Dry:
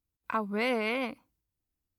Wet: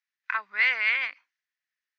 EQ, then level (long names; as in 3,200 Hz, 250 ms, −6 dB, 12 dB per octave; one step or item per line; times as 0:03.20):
high-pass with resonance 1,800 Hz, resonance Q 5.5
low-pass with resonance 6,200 Hz, resonance Q 2.7
high-frequency loss of the air 190 metres
+3.5 dB